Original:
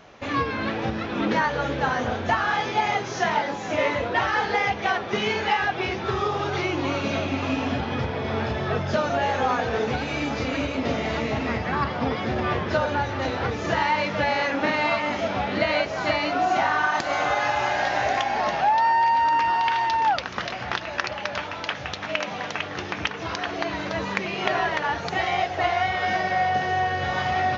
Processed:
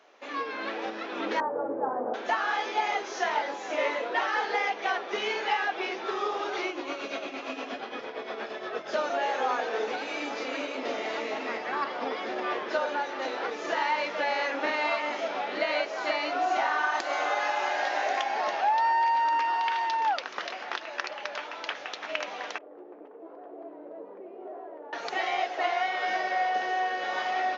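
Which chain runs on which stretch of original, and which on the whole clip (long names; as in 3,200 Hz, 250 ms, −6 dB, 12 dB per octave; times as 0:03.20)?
0:01.40–0:02.14: low-pass filter 1,000 Hz 24 dB per octave + low-shelf EQ 390 Hz +7 dB
0:06.68–0:08.92: notch filter 890 Hz, Q 14 + amplitude tremolo 8.6 Hz, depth 59%
0:22.58–0:24.93: tube saturation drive 26 dB, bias 0.55 + flat-topped band-pass 380 Hz, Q 0.97
whole clip: high-pass filter 320 Hz 24 dB per octave; automatic gain control gain up to 4.5 dB; level −9 dB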